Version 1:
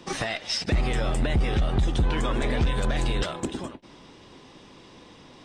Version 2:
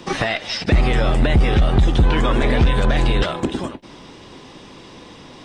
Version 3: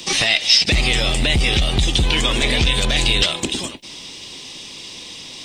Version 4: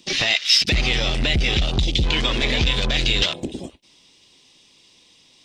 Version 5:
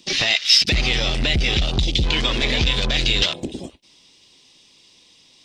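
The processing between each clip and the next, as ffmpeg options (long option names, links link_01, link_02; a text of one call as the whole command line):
ffmpeg -i in.wav -filter_complex "[0:a]acrossover=split=4400[link_01][link_02];[link_02]acompressor=threshold=-50dB:ratio=4:attack=1:release=60[link_03];[link_01][link_03]amix=inputs=2:normalize=0,volume=8.5dB" out.wav
ffmpeg -i in.wav -af "aexciter=amount=7.7:drive=3.1:freq=2200,volume=-4dB" out.wav
ffmpeg -i in.wav -af "afwtdn=0.0562,volume=-2.5dB" out.wav
ffmpeg -i in.wav -af "equalizer=frequency=4800:width_type=o:width=0.77:gain=2.5" out.wav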